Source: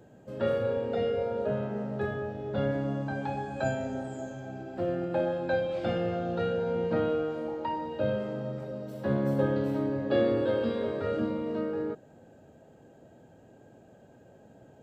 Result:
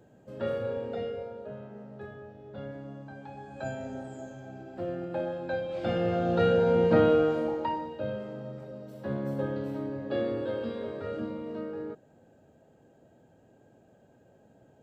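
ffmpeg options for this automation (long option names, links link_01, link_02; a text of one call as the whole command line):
ffmpeg -i in.wav -af "volume=14.5dB,afade=type=out:start_time=0.84:duration=0.57:silence=0.398107,afade=type=in:start_time=3.31:duration=0.58:silence=0.421697,afade=type=in:start_time=5.67:duration=0.84:silence=0.298538,afade=type=out:start_time=7.28:duration=0.69:silence=0.266073" out.wav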